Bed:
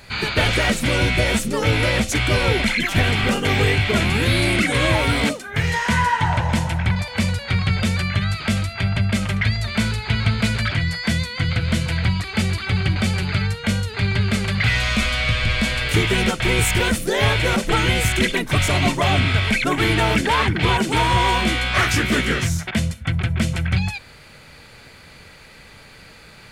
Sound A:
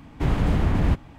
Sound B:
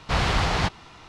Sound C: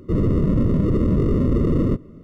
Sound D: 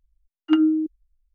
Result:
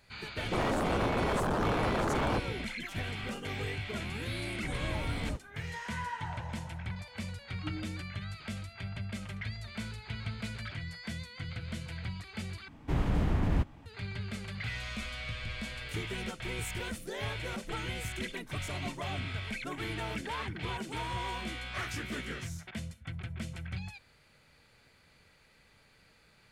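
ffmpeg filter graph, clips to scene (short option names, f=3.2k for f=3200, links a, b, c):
-filter_complex "[1:a]asplit=2[a][b];[0:a]volume=-19dB[c];[3:a]aeval=exprs='0.0668*(abs(mod(val(0)/0.0668+3,4)-2)-1)':c=same[d];[4:a]aecho=1:1:4.6:0.96[e];[c]asplit=2[f][g];[f]atrim=end=12.684[h];[b]atrim=end=1.18,asetpts=PTS-STARTPTS,volume=-7.5dB[i];[g]atrim=start=13.856[j];[d]atrim=end=2.23,asetpts=PTS-STARTPTS,volume=-2dB,afade=t=in:d=0.004:c=hsin,afade=t=out:st=2.226:d=0.004:c=hsin,adelay=430[k];[a]atrim=end=1.18,asetpts=PTS-STARTPTS,volume=-17dB,afade=t=in:d=0.004:c=hsin,afade=t=out:st=1.176:d=0.004:c=hsin,adelay=4420[l];[e]atrim=end=1.34,asetpts=PTS-STARTPTS,volume=-17dB,afade=t=in:d=0.004:c=hsin,afade=t=out:st=1.336:d=0.004:c=hsin,adelay=314874S[m];[h][i]acrossfade=d=0.004:c1=hsin:c2=hsin[n];[n][j]acrossfade=d=0.004:c1=hsin:c2=hsin[o];[o][k][l][m]amix=inputs=4:normalize=0"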